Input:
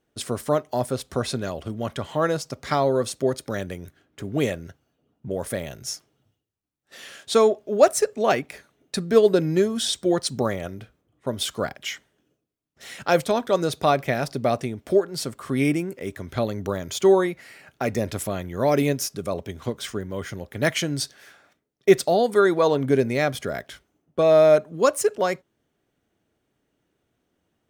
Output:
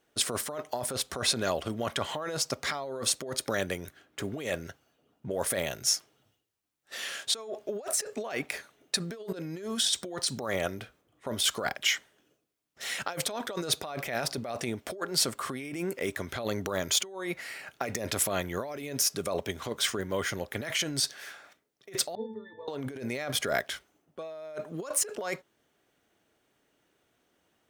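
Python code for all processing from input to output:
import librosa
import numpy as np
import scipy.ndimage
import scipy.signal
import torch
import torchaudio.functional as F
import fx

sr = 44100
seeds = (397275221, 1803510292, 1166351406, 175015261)

y = fx.chain(x, sr, fx.tilt_shelf(db=5.0, hz=1300.0),
    fx.level_steps(step_db=10),
    fx.octave_resonator(note='A', decay_s=0.43), at=(22.15, 22.68))
y = fx.over_compress(y, sr, threshold_db=-29.0, ratio=-1.0)
y = fx.low_shelf(y, sr, hz=350.0, db=-12.0)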